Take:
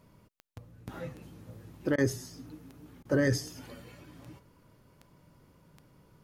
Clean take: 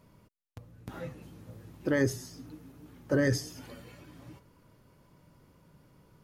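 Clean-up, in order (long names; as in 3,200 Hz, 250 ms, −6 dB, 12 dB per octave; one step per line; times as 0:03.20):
click removal
repair the gap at 0:01.96/0:03.03, 20 ms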